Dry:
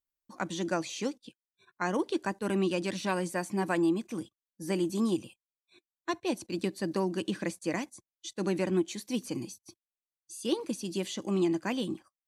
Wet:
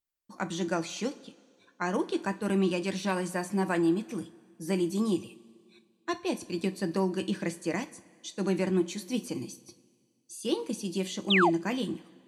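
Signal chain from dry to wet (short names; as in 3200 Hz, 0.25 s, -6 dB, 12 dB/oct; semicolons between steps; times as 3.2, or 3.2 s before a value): two-slope reverb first 0.27 s, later 2 s, from -18 dB, DRR 8.5 dB; painted sound fall, 11.3–11.5, 600–4000 Hz -24 dBFS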